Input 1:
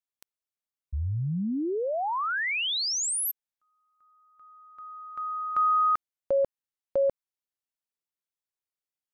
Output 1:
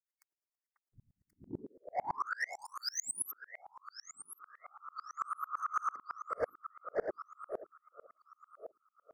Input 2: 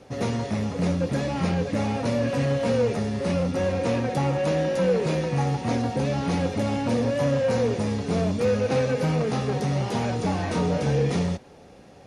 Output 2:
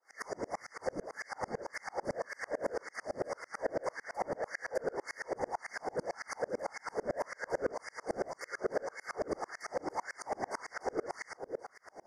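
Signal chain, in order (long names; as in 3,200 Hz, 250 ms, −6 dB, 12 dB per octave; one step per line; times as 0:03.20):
mains-hum notches 50/100/150/200/250/300/350 Hz
auto-filter high-pass sine 1.8 Hz 370–1,900 Hz
in parallel at −2.5 dB: downward compressor, threshold −31 dBFS
on the sum: random phases in short frames
on a send: delay that swaps between a low-pass and a high-pass 538 ms, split 1,500 Hz, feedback 58%, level −11 dB
on the sum: soft clipping −20.5 dBFS
brick-wall band-stop 2,200–4,500 Hz
tremolo with a ramp in dB swelling 9 Hz, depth 35 dB
level −3 dB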